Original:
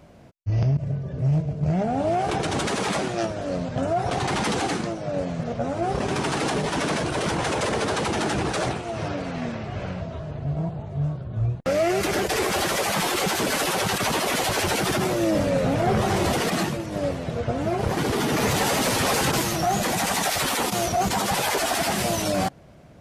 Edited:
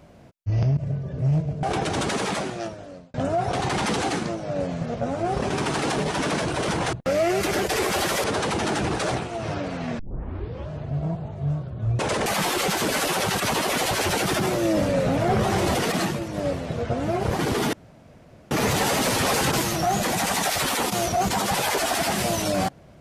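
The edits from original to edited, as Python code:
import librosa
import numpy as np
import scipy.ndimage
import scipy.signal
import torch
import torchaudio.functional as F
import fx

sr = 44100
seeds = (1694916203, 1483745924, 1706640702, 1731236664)

y = fx.edit(x, sr, fx.cut(start_s=1.63, length_s=0.58),
    fx.fade_out_span(start_s=2.76, length_s=0.96),
    fx.swap(start_s=7.51, length_s=0.27, other_s=11.53, other_length_s=1.31),
    fx.tape_start(start_s=9.53, length_s=0.72),
    fx.insert_room_tone(at_s=18.31, length_s=0.78), tone=tone)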